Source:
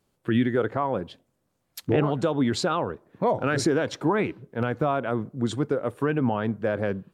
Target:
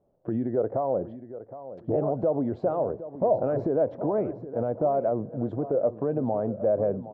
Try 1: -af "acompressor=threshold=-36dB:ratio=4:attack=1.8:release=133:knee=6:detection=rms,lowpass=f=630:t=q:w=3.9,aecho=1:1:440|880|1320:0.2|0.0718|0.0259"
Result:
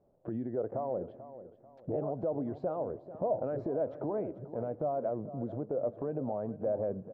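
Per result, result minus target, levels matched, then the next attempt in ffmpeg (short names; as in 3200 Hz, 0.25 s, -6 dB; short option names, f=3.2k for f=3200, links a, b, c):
echo 0.325 s early; compressor: peak gain reduction +8 dB
-af "acompressor=threshold=-36dB:ratio=4:attack=1.8:release=133:knee=6:detection=rms,lowpass=f=630:t=q:w=3.9,aecho=1:1:765|1530|2295:0.2|0.0718|0.0259"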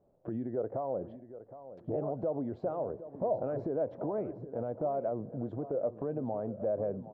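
compressor: peak gain reduction +8 dB
-af "acompressor=threshold=-25dB:ratio=4:attack=1.8:release=133:knee=6:detection=rms,lowpass=f=630:t=q:w=3.9,aecho=1:1:765|1530|2295:0.2|0.0718|0.0259"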